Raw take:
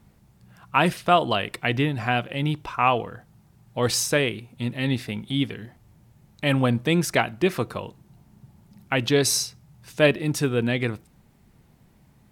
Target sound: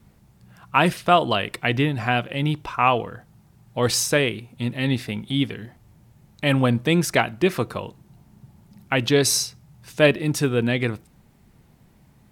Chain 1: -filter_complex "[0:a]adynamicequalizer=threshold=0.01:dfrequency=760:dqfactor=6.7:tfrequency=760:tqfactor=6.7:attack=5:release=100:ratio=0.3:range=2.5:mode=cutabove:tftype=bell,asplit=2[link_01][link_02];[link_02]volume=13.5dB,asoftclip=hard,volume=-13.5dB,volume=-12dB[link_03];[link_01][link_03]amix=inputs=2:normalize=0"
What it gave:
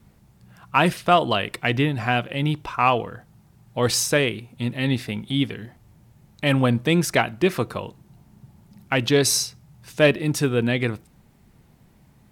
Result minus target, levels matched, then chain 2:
gain into a clipping stage and back: distortion +25 dB
-filter_complex "[0:a]adynamicequalizer=threshold=0.01:dfrequency=760:dqfactor=6.7:tfrequency=760:tqfactor=6.7:attack=5:release=100:ratio=0.3:range=2.5:mode=cutabove:tftype=bell,asplit=2[link_01][link_02];[link_02]volume=6.5dB,asoftclip=hard,volume=-6.5dB,volume=-12dB[link_03];[link_01][link_03]amix=inputs=2:normalize=0"

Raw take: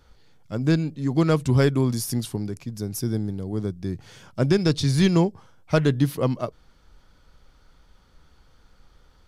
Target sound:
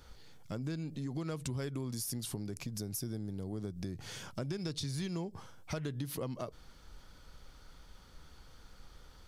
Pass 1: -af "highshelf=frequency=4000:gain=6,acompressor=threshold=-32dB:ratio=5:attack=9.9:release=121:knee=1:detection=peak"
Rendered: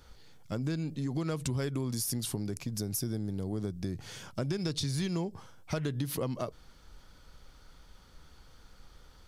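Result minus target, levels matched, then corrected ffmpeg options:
downward compressor: peak gain reduction −5 dB
-af "highshelf=frequency=4000:gain=6,acompressor=threshold=-38.5dB:ratio=5:attack=9.9:release=121:knee=1:detection=peak"

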